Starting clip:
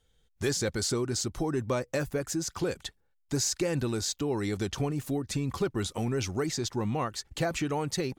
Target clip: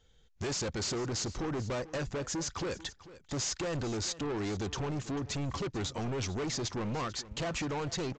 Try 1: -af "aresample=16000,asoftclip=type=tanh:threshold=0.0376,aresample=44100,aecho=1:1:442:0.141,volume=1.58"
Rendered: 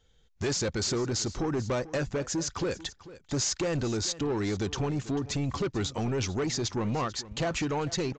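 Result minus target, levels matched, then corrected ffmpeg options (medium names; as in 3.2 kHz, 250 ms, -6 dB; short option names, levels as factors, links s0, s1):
saturation: distortion -6 dB
-af "aresample=16000,asoftclip=type=tanh:threshold=0.0158,aresample=44100,aecho=1:1:442:0.141,volume=1.58"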